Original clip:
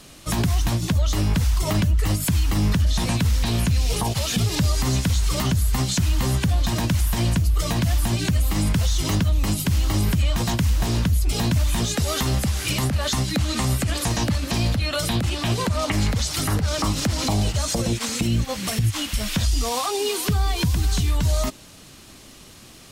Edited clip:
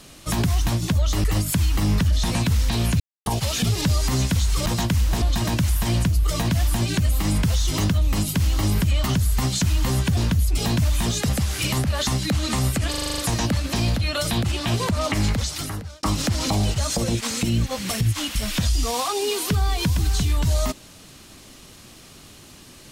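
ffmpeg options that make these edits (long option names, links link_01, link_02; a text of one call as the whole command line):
ffmpeg -i in.wav -filter_complex "[0:a]asplit=17[link_01][link_02][link_03][link_04][link_05][link_06][link_07][link_08][link_09][link_10][link_11][link_12][link_13][link_14][link_15][link_16][link_17];[link_01]atrim=end=1.242[link_18];[link_02]atrim=start=1.978:end=3.74,asetpts=PTS-STARTPTS,afade=type=out:start_time=1.758:duration=0.004:curve=hsin[link_19];[link_03]atrim=start=3.74:end=4,asetpts=PTS-STARTPTS,volume=0[link_20];[link_04]atrim=start=4:end=5.402,asetpts=PTS-STARTPTS,afade=type=in:duration=0.004:curve=hsin[link_21];[link_05]atrim=start=10.348:end=10.912[link_22];[link_06]atrim=start=6.528:end=10.352[link_23];[link_07]atrim=start=5.398:end=6.532[link_24];[link_08]atrim=start=10.908:end=12.032[link_25];[link_09]atrim=start=12.348:end=14.002[link_26];[link_10]atrim=start=13.958:end=14.002[link_27];[link_11]atrim=start=13.958:end=14.002[link_28];[link_12]atrim=start=13.958:end=14.002[link_29];[link_13]atrim=start=13.958:end=14.002[link_30];[link_14]atrim=start=13.958:end=14.002[link_31];[link_15]atrim=start=13.958:end=14.002[link_32];[link_16]atrim=start=13.958:end=16.81,asetpts=PTS-STARTPTS,afade=type=out:start_time=2.132:duration=0.72[link_33];[link_17]atrim=start=16.81,asetpts=PTS-STARTPTS,afade=type=in:duration=0.004:curve=hsin[link_34];[link_19][link_20][link_21]concat=n=3:v=0:a=1[link_35];[link_18][link_35]acrossfade=duration=0.004:curve1=hsin:curve2=hsin[link_36];[link_36][link_22]acrossfade=duration=0.004:curve1=hsin:curve2=hsin[link_37];[link_37][link_23]acrossfade=duration=0.004:curve1=hsin:curve2=hsin[link_38];[link_38][link_24]acrossfade=duration=0.004:curve1=hsin:curve2=hsin[link_39];[link_39][link_25]acrossfade=duration=0.004:curve1=hsin:curve2=hsin[link_40];[link_40][link_26]acrossfade=duration=0.004:curve1=hsin:curve2=hsin[link_41];[link_41][link_27]acrossfade=duration=0.004:curve1=hsin:curve2=hsin[link_42];[link_42][link_28]acrossfade=duration=0.004:curve1=hsin:curve2=hsin[link_43];[link_43][link_29]acrossfade=duration=0.004:curve1=hsin:curve2=hsin[link_44];[link_44][link_30]acrossfade=duration=0.004:curve1=hsin:curve2=hsin[link_45];[link_45][link_31]acrossfade=duration=0.004:curve1=hsin:curve2=hsin[link_46];[link_46][link_32]acrossfade=duration=0.004:curve1=hsin:curve2=hsin[link_47];[link_33][link_34]concat=n=2:v=0:a=1[link_48];[link_47][link_48]acrossfade=duration=0.004:curve1=hsin:curve2=hsin" out.wav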